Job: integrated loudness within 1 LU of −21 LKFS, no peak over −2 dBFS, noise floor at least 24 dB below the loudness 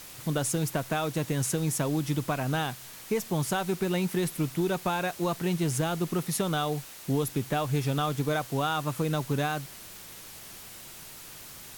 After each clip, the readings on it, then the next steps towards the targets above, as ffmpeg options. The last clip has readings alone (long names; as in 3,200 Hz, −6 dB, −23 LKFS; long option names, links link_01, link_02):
background noise floor −46 dBFS; target noise floor −54 dBFS; integrated loudness −29.5 LKFS; sample peak −15.5 dBFS; target loudness −21.0 LKFS
→ -af "afftdn=noise_reduction=8:noise_floor=-46"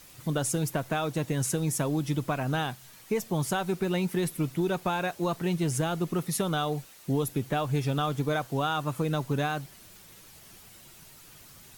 background noise floor −52 dBFS; target noise floor −54 dBFS
→ -af "afftdn=noise_reduction=6:noise_floor=-52"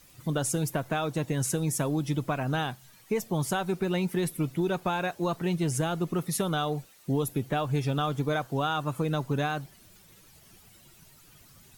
background noise floor −56 dBFS; integrated loudness −29.5 LKFS; sample peak −16.5 dBFS; target loudness −21.0 LKFS
→ -af "volume=8.5dB"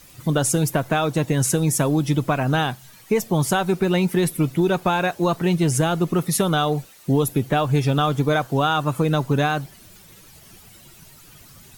integrated loudness −21.0 LKFS; sample peak −8.0 dBFS; background noise floor −48 dBFS